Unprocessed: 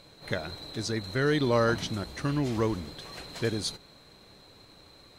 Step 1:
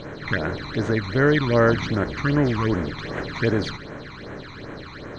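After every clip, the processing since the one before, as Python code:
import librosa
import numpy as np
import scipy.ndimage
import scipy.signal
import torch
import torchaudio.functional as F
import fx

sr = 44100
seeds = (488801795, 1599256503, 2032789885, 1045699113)

y = fx.bin_compress(x, sr, power=0.6)
y = fx.curve_eq(y, sr, hz=(1200.0, 1700.0, 6000.0, 10000.0), db=(0, 7, -10, -26))
y = fx.phaser_stages(y, sr, stages=12, low_hz=500.0, high_hz=4600.0, hz=2.6, feedback_pct=35)
y = y * 10.0 ** (5.0 / 20.0)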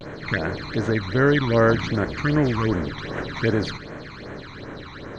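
y = fx.vibrato(x, sr, rate_hz=0.56, depth_cents=54.0)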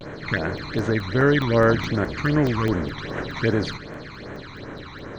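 y = fx.buffer_crackle(x, sr, first_s=0.37, period_s=0.21, block=64, kind='zero')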